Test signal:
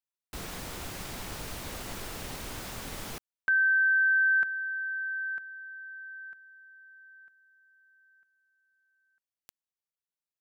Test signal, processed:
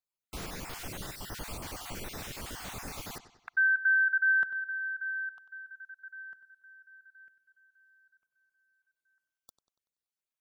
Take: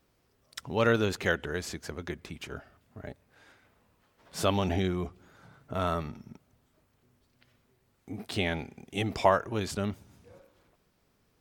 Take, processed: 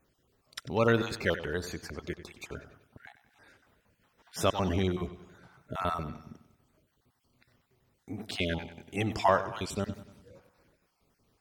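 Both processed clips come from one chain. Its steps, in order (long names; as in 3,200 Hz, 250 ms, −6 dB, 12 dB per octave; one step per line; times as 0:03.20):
time-frequency cells dropped at random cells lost 33%
bucket-brigade delay 95 ms, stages 4,096, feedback 48%, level −13.5 dB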